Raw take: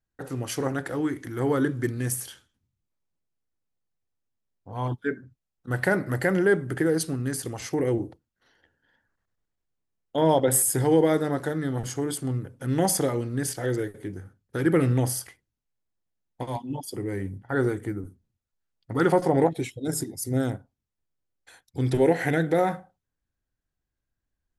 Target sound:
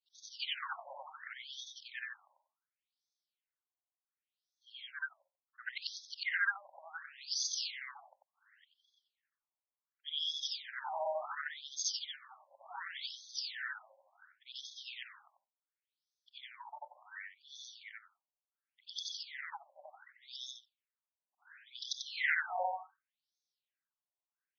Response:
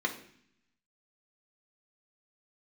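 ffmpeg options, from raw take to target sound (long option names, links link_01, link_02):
-af "afftfilt=real='re':imag='-im':win_size=8192:overlap=0.75,aderivative,afftfilt=real='re*between(b*sr/1024,740*pow(4700/740,0.5+0.5*sin(2*PI*0.69*pts/sr))/1.41,740*pow(4700/740,0.5+0.5*sin(2*PI*0.69*pts/sr))*1.41)':imag='im*between(b*sr/1024,740*pow(4700/740,0.5+0.5*sin(2*PI*0.69*pts/sr))/1.41,740*pow(4700/740,0.5+0.5*sin(2*PI*0.69*pts/sr))*1.41)':win_size=1024:overlap=0.75,volume=17dB"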